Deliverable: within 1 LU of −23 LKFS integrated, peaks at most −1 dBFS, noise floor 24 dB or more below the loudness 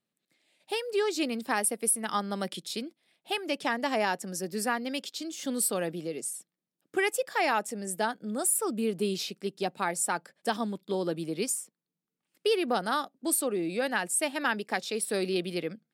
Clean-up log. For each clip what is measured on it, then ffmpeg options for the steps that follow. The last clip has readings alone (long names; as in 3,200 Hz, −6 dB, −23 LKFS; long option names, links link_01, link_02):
integrated loudness −30.0 LKFS; sample peak −13.0 dBFS; target loudness −23.0 LKFS
→ -af "volume=7dB"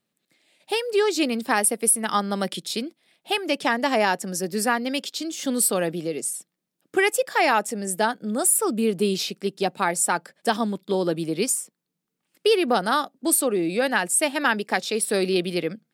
integrated loudness −23.0 LKFS; sample peak −6.0 dBFS; background noise floor −81 dBFS